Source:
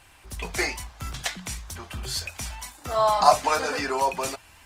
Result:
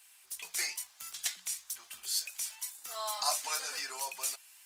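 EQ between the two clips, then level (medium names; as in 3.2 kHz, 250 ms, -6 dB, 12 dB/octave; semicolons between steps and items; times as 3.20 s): differentiator; bass shelf 100 Hz -8 dB; 0.0 dB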